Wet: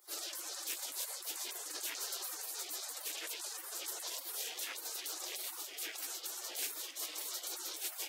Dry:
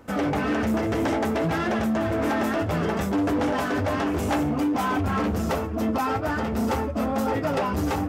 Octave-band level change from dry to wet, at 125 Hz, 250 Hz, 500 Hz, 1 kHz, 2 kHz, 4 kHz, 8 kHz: under -40 dB, -38.5 dB, -28.5 dB, -25.5 dB, -17.5 dB, -2.0 dB, +5.0 dB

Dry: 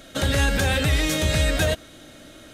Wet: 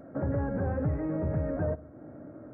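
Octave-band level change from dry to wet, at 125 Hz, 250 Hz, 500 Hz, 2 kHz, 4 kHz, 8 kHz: -7.0 dB, -4.5 dB, -6.5 dB, -22.5 dB, under -40 dB, under -40 dB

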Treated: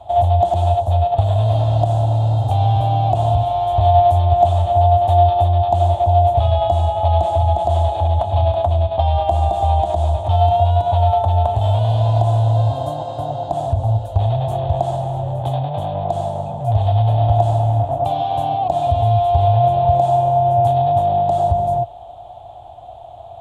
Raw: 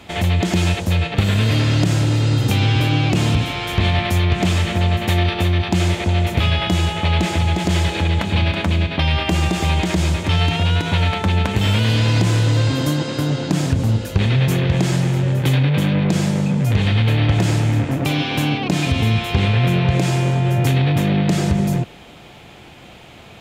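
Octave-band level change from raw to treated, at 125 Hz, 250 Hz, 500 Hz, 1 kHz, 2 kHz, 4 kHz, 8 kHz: -0.5 dB, -13.5 dB, +8.5 dB, +11.5 dB, under -20 dB, -12.0 dB, under -15 dB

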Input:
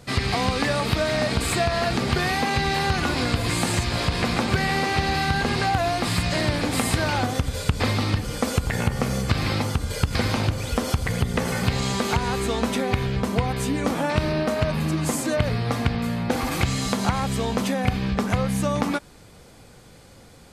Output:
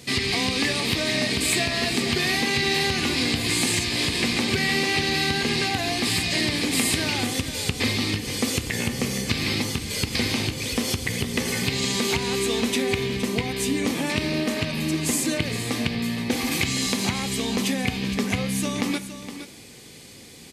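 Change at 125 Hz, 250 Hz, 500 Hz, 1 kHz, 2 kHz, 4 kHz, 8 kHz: -5.5, 0.0, -2.5, -6.5, +1.5, +5.0, +5.0 dB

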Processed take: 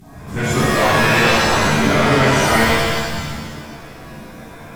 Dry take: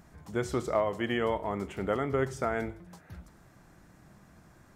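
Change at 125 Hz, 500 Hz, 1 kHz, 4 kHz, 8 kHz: +18.5, +12.5, +18.0, +25.5, +25.0 dB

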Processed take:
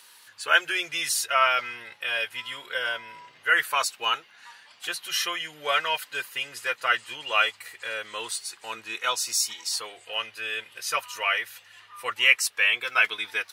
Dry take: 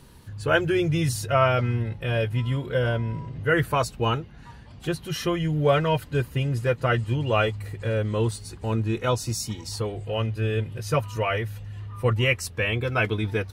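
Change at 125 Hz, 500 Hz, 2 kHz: under -35 dB, -11.0 dB, +5.5 dB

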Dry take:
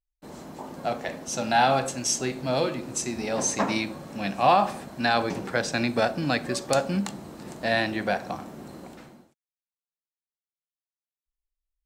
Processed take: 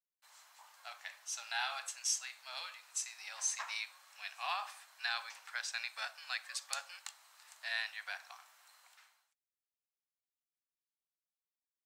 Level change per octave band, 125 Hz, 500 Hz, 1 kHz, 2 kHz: under -40 dB, -32.0 dB, -19.5 dB, -10.5 dB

